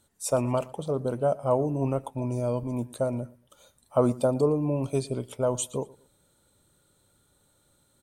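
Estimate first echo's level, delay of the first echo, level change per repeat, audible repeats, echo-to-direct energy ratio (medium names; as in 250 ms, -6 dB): -22.0 dB, 116 ms, -11.0 dB, 2, -21.5 dB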